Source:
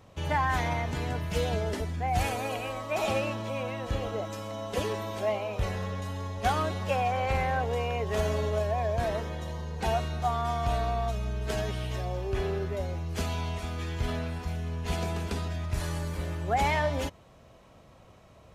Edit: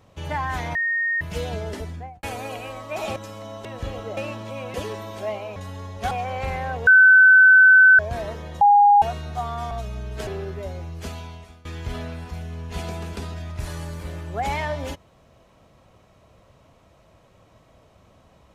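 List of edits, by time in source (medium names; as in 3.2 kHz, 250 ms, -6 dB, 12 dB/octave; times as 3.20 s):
0.75–1.21 s: bleep 1.85 kHz -20 dBFS
1.88–2.23 s: studio fade out
3.16–3.73 s: swap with 4.25–4.74 s
5.56–5.97 s: delete
6.52–6.98 s: delete
7.74–8.86 s: bleep 1.52 kHz -8 dBFS
9.48–9.89 s: bleep 818 Hz -10 dBFS
10.58–11.01 s: delete
11.57–12.41 s: delete
13.03–13.79 s: fade out, to -20 dB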